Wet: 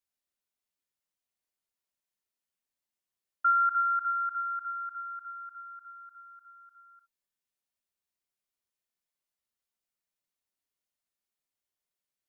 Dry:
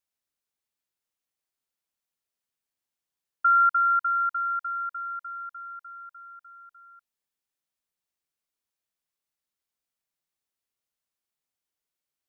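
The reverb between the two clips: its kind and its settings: non-linear reverb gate 90 ms falling, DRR 4.5 dB; gain -4.5 dB

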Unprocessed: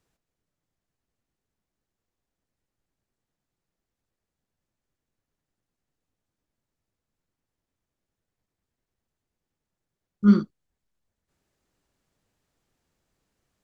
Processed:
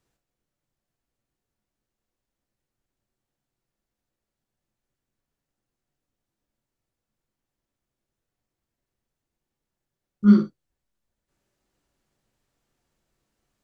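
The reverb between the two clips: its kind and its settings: non-linear reverb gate 80 ms flat, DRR 5 dB; gain -1 dB

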